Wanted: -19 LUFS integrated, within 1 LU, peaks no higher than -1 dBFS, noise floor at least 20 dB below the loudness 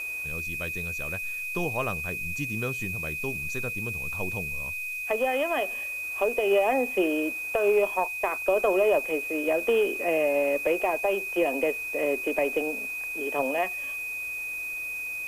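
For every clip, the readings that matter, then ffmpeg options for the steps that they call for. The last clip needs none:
steady tone 2500 Hz; tone level -31 dBFS; noise floor -34 dBFS; noise floor target -47 dBFS; loudness -27.0 LUFS; peak -12.0 dBFS; loudness target -19.0 LUFS
-> -af "bandreject=f=2.5k:w=30"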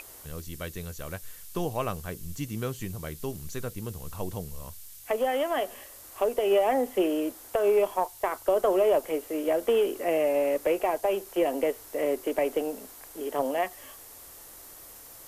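steady tone none; noise floor -48 dBFS; noise floor target -49 dBFS
-> -af "afftdn=nr=6:nf=-48"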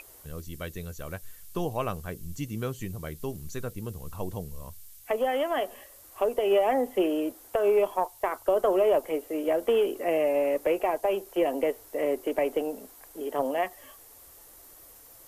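noise floor -52 dBFS; loudness -28.5 LUFS; peak -13.0 dBFS; loudness target -19.0 LUFS
-> -af "volume=9.5dB"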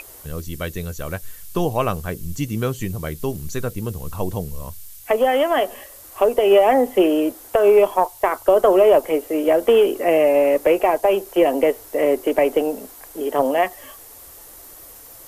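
loudness -19.0 LUFS; peak -3.5 dBFS; noise floor -42 dBFS

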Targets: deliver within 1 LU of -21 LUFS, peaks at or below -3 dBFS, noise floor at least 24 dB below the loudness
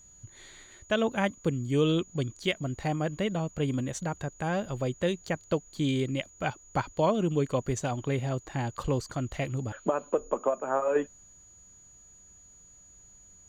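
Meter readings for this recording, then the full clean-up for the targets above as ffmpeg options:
steady tone 6800 Hz; tone level -53 dBFS; loudness -30.5 LUFS; peak -14.5 dBFS; loudness target -21.0 LUFS
-> -af "bandreject=f=6.8k:w=30"
-af "volume=9.5dB"

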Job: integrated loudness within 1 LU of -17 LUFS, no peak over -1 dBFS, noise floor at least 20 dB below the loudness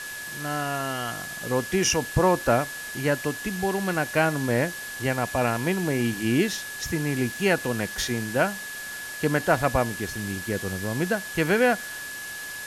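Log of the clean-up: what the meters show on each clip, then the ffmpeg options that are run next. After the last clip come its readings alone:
steady tone 1700 Hz; tone level -35 dBFS; noise floor -36 dBFS; noise floor target -46 dBFS; loudness -26.0 LUFS; peak -7.5 dBFS; loudness target -17.0 LUFS
-> -af "bandreject=f=1.7k:w=30"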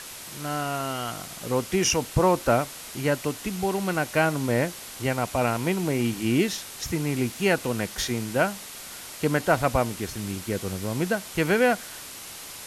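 steady tone none; noise floor -41 dBFS; noise floor target -46 dBFS
-> -af "afftdn=nr=6:nf=-41"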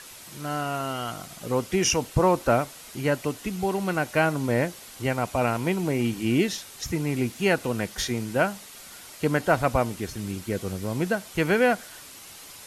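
noise floor -45 dBFS; noise floor target -46 dBFS
-> -af "afftdn=nr=6:nf=-45"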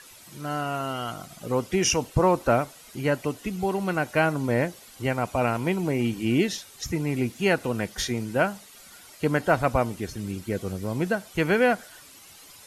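noise floor -49 dBFS; loudness -26.0 LUFS; peak -7.5 dBFS; loudness target -17.0 LUFS
-> -af "volume=9dB,alimiter=limit=-1dB:level=0:latency=1"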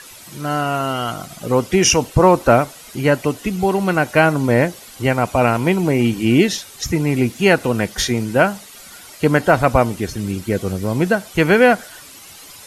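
loudness -17.0 LUFS; peak -1.0 dBFS; noise floor -40 dBFS

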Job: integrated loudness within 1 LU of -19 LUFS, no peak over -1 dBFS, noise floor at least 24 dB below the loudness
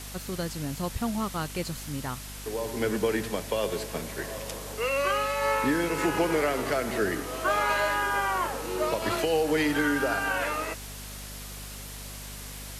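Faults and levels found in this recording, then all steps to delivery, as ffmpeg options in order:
hum 50 Hz; harmonics up to 250 Hz; hum level -41 dBFS; noise floor -40 dBFS; noise floor target -53 dBFS; loudness -28.5 LUFS; peak -14.0 dBFS; loudness target -19.0 LUFS
-> -af "bandreject=f=50:t=h:w=6,bandreject=f=100:t=h:w=6,bandreject=f=150:t=h:w=6,bandreject=f=200:t=h:w=6,bandreject=f=250:t=h:w=6"
-af "afftdn=nr=13:nf=-40"
-af "volume=9.5dB"

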